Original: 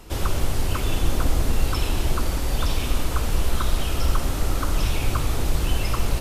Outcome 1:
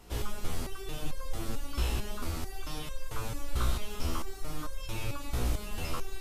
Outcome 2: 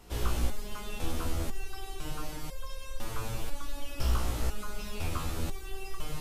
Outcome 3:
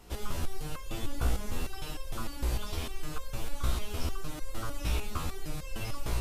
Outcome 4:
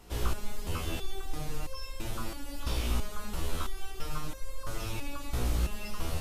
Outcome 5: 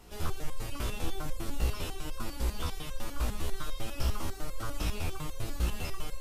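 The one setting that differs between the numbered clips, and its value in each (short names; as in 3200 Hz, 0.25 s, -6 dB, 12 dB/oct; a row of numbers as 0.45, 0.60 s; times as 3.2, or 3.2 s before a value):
stepped resonator, rate: 4.5, 2, 6.6, 3, 10 Hz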